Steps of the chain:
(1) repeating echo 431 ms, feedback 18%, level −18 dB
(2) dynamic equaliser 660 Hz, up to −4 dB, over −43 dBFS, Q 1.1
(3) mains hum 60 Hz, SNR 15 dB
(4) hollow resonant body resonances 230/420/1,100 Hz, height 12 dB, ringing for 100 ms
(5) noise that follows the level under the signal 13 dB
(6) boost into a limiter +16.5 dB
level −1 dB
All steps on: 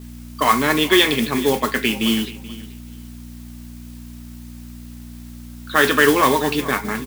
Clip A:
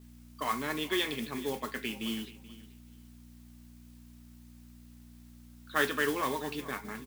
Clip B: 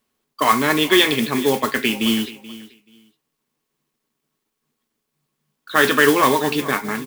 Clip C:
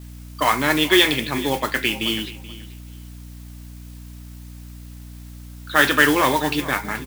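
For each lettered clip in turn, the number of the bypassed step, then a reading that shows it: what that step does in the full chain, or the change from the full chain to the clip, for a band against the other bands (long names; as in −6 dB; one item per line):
6, change in crest factor +4.5 dB
3, 125 Hz band −2.0 dB
4, 500 Hz band −2.5 dB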